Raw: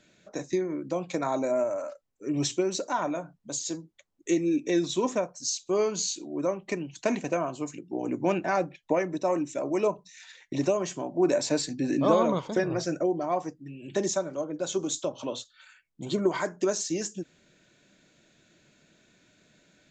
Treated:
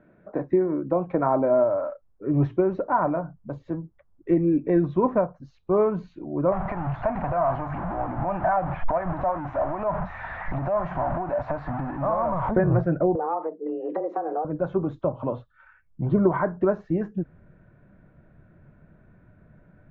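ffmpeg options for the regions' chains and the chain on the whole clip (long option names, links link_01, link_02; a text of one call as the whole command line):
ffmpeg -i in.wav -filter_complex "[0:a]asettb=1/sr,asplit=3[link_01][link_02][link_03];[link_01]atrim=end=6.524[link_04];[link_02]atrim=start=6.52:end=12.51,asetpts=PTS-STARTPTS,afade=type=in:duration=0.004:curve=qsin,afade=type=out:start_time=5.986:duration=0.004:curve=qsin,aeval=exprs='val(0)+0.5*0.0398*sgn(val(0))':channel_layout=same,acompressor=threshold=-27dB:ratio=4:attack=3.2:release=140:knee=1:detection=peak,lowshelf=frequency=550:width_type=q:width=3:gain=-7[link_05];[link_03]atrim=start=12.506[link_06];[link_04][link_05]acrossfade=duration=0.004:curve1=hsin:curve2=qsin[link_07];[link_07][link_06]acrossfade=duration=0.004:curve1=qsin:curve2=hsin,asettb=1/sr,asplit=3[link_08][link_09][link_10];[link_08]atrim=end=13.154[link_11];[link_09]atrim=start=13.15:end=14.45,asetpts=PTS-STARTPTS,afade=type=in:duration=0.004:curve=qsin,afade=type=out:start_time=1.296:duration=0.004:curve=qsin,lowshelf=frequency=440:gain=10.5,acompressor=threshold=-28dB:ratio=12:attack=3.2:release=140:knee=1:detection=peak,afreqshift=160[link_12];[link_10]atrim=start=14.446[link_13];[link_11][link_12]acrossfade=duration=0.004:curve1=hsin:curve2=qsin[link_14];[link_14][link_13]acrossfade=duration=0.004:curve1=qsin:curve2=hsin,lowpass=frequency=1400:width=0.5412,lowpass=frequency=1400:width=1.3066,asubboost=boost=7:cutoff=110,volume=7.5dB" out.wav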